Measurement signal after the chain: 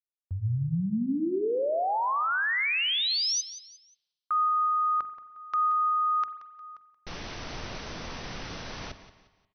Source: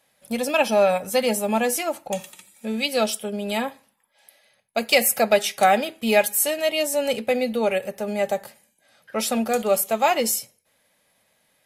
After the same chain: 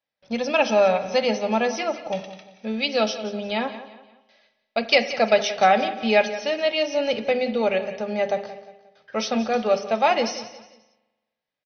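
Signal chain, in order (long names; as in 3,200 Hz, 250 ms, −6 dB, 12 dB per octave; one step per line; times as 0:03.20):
noise gate with hold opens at −47 dBFS
linear-phase brick-wall low-pass 6,200 Hz
mains-hum notches 50/100/150/200/250/300/350/400 Hz
repeating echo 178 ms, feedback 35%, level −14.5 dB
spring reverb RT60 1.2 s, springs 42 ms, chirp 35 ms, DRR 13.5 dB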